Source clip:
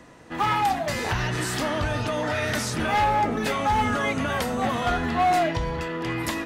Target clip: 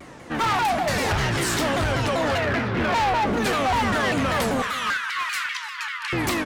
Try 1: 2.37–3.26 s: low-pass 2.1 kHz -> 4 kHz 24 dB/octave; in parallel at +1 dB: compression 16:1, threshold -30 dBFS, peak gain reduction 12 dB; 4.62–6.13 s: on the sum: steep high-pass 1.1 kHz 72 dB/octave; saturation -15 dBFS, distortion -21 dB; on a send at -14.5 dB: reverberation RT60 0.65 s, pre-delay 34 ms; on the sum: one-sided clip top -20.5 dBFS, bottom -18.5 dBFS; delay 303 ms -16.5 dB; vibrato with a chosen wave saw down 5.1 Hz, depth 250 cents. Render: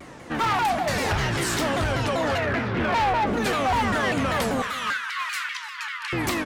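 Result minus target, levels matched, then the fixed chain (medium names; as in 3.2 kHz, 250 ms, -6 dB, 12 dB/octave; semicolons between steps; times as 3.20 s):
compression: peak gain reduction +8 dB
2.37–3.26 s: low-pass 2.1 kHz -> 4 kHz 24 dB/octave; in parallel at +1 dB: compression 16:1, threshold -21.5 dBFS, peak gain reduction 4 dB; 4.62–6.13 s: on the sum: steep high-pass 1.1 kHz 72 dB/octave; saturation -15 dBFS, distortion -17 dB; on a send at -14.5 dB: reverberation RT60 0.65 s, pre-delay 34 ms; on the sum: one-sided clip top -20.5 dBFS, bottom -18.5 dBFS; delay 303 ms -16.5 dB; vibrato with a chosen wave saw down 5.1 Hz, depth 250 cents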